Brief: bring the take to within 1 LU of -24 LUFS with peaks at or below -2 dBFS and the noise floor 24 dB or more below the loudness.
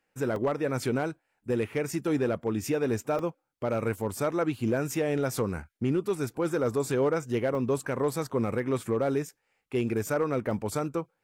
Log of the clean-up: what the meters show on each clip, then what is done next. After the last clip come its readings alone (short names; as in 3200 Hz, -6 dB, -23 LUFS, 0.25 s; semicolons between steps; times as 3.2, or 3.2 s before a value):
clipped 0.6%; flat tops at -19.5 dBFS; dropouts 6; longest dropout 1.9 ms; loudness -29.5 LUFS; peak -19.5 dBFS; loudness target -24.0 LUFS
-> clip repair -19.5 dBFS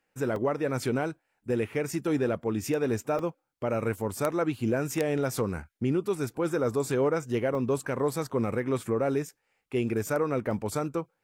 clipped 0.0%; dropouts 6; longest dropout 1.9 ms
-> interpolate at 0.36/3.19/5.36/7.55/8.13/10.51, 1.9 ms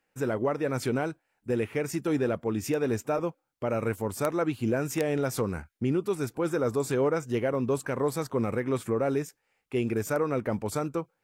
dropouts 0; loudness -29.5 LUFS; peak -10.5 dBFS; loudness target -24.0 LUFS
-> gain +5.5 dB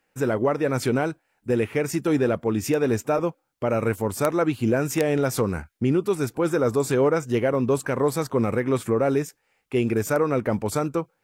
loudness -24.0 LUFS; peak -5.0 dBFS; noise floor -72 dBFS